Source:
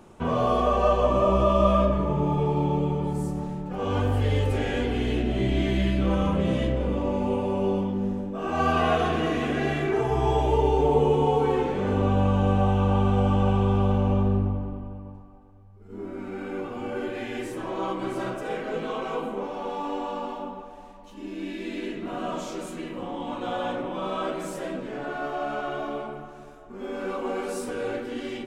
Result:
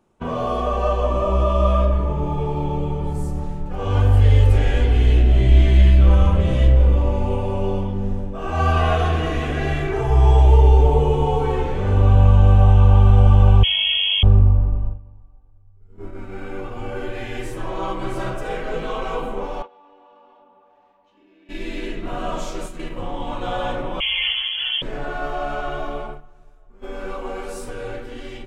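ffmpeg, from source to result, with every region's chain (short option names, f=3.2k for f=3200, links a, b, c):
-filter_complex "[0:a]asettb=1/sr,asplit=3[a][b][c];[a]atrim=end=13.634[d];[b]atrim=start=13.63:end=14.23,asetpts=PTS-STARTPTS,afade=t=in:d=0.004:c=qsin,afade=t=out:st=0.596:d=0.004:c=qsin,aecho=1:1:6.6:0.7,atrim=end_sample=26460,lowpass=f=2.9k:t=q:w=0.5098,lowpass=f=2.9k:t=q:w=0.6013,lowpass=f=2.9k:t=q:w=0.9,lowpass=f=2.9k:t=q:w=2.563,afreqshift=-3400[e];[c]atrim=start=14.226[f];[d][e]acrossfade=d=0.004:c1=hsin:c2=qsin[g];[g][f]acrossfade=d=0.004:c1=qsin:c2=hsin,asettb=1/sr,asplit=3[h][i][j];[h]atrim=end=19.624[k];[i]atrim=start=19.62:end=21.49,asetpts=PTS-STARTPTS,afade=t=in:d=0.004:c=qsin,afade=t=out:st=1.866:d=0.004:c=qsin,highpass=280,lowpass=3.3k,acompressor=threshold=-41dB:ratio=2.5:attack=3.2:release=140:knee=1:detection=peak[l];[j]atrim=start=21.486[m];[k][l]acrossfade=d=0.004:c1=hsin:c2=qsin[n];[n][m]acrossfade=d=0.004:c1=qsin:c2=hsin,asettb=1/sr,asplit=3[o][p][q];[o]atrim=end=24.004[r];[p]atrim=start=24:end=24.82,asetpts=PTS-STARTPTS,afade=t=in:d=0.004:c=qsin,afade=t=out:st=0.816:d=0.004:c=qsin,aemphasis=mode=reproduction:type=bsi,lowpass=f=2.9k:t=q:w=0.5098,lowpass=f=2.9k:t=q:w=0.6013,lowpass=f=2.9k:t=q:w=0.9,lowpass=f=2.9k:t=q:w=2.563,afreqshift=-3400[s];[q]atrim=start=24.816[t];[r][s]acrossfade=d=0.004:c1=hsin:c2=qsin[u];[u][t]acrossfade=d=0.004:c1=qsin:c2=hsin,agate=range=-14dB:threshold=-35dB:ratio=16:detection=peak,asubboost=boost=10.5:cutoff=68,dynaudnorm=f=670:g=9:m=5dB"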